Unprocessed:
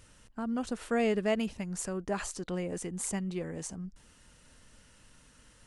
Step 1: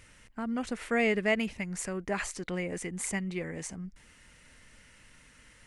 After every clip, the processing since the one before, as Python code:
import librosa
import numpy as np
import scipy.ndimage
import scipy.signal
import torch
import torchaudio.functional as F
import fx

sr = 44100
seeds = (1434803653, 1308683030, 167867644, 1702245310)

y = fx.peak_eq(x, sr, hz=2100.0, db=11.5, octaves=0.58)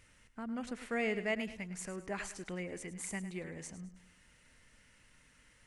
y = fx.echo_feedback(x, sr, ms=105, feedback_pct=39, wet_db=-13.0)
y = y * librosa.db_to_amplitude(-7.5)